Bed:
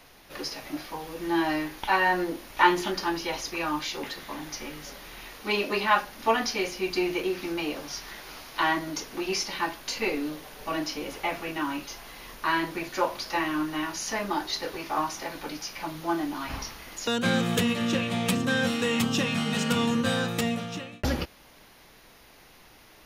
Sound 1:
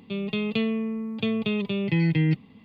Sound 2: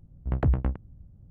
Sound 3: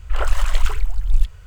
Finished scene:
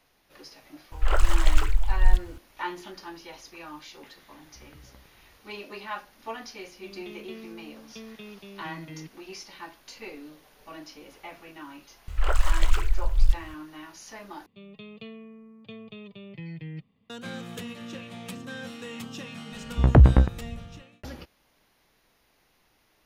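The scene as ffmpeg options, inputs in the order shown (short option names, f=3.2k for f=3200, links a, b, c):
-filter_complex "[3:a]asplit=2[a][b];[2:a]asplit=2[c][d];[1:a]asplit=2[e][f];[0:a]volume=-13dB[g];[c]acompressor=threshold=-33dB:ratio=6:attack=3.2:release=140:knee=1:detection=peak[h];[e]highpass=210[i];[b]acompressor=mode=upward:threshold=-26dB:ratio=1.5:attack=76:release=289:knee=2.83:detection=peak[j];[f]aecho=1:1:1.7:0.4[k];[d]dynaudnorm=f=110:g=5:m=11.5dB[l];[g]asplit=2[m][n];[m]atrim=end=14.464[o];[k]atrim=end=2.64,asetpts=PTS-STARTPTS,volume=-16.5dB[p];[n]atrim=start=17.096[q];[a]atrim=end=1.46,asetpts=PTS-STARTPTS,volume=-2dB,afade=t=in:d=0.004:c=hsin,afade=t=out:st=1.456:d=0.004:c=hsin,adelay=920[r];[h]atrim=end=1.3,asetpts=PTS-STARTPTS,volume=-16.5dB,afade=t=in:d=0.004:c=hsin,afade=t=out:st=1.296:d=0.004:c=hsin,adelay=4300[s];[i]atrim=end=2.64,asetpts=PTS-STARTPTS,volume=-16dB,afade=t=in:d=0.004:c=hsin,afade=t=out:st=2.636:d=0.004:c=hsin,adelay=6730[t];[j]atrim=end=1.46,asetpts=PTS-STARTPTS,volume=-3.5dB,afade=t=in:d=0.004:c=hsin,afade=t=out:st=1.456:d=0.004:c=hsin,adelay=12080[u];[l]atrim=end=1.3,asetpts=PTS-STARTPTS,volume=-0.5dB,afade=t=in:d=0.004:c=hsin,afade=t=out:st=1.296:d=0.004:c=hsin,adelay=19520[v];[o][p]acrossfade=d=0.004:c1=hsin:c2=hsin[w];[w][q]acrossfade=d=0.004:c1=hsin:c2=hsin[x];[x][r][s][t][u][v]amix=inputs=6:normalize=0"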